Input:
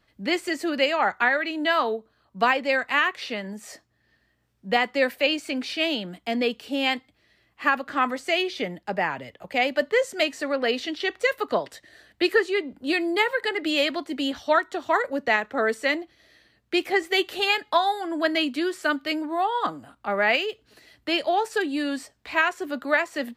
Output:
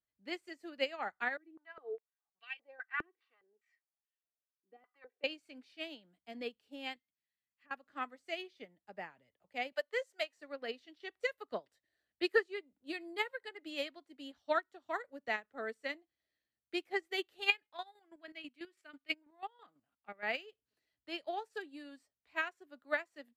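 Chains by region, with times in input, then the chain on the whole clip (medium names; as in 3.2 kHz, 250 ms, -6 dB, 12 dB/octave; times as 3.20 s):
1.37–5.24 s: peaking EQ 1.9 kHz +5.5 dB 2.7 oct + comb 2.6 ms, depth 62% + step-sequenced band-pass 4.9 Hz 330–2900 Hz
6.96–7.71 s: low-pass that closes with the level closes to 700 Hz, closed at -26 dBFS + high-pass 200 Hz 6 dB/octave + high-order bell 600 Hz -11 dB 2.4 oct
9.72–10.37 s: high-pass 450 Hz 24 dB/octave + three bands compressed up and down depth 40%
17.46–20.23 s: peaking EQ 2.4 kHz +9 dB 0.75 oct + square tremolo 6.1 Hz, depth 60%, duty 25%
whole clip: dynamic bell 1 kHz, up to -4 dB, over -40 dBFS, Q 5.6; upward expansion 2.5:1, over -32 dBFS; trim -7.5 dB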